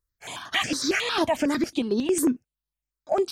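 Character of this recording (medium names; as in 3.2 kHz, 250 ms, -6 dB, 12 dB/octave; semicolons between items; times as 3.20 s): notches that jump at a steady rate 11 Hz 730–7800 Hz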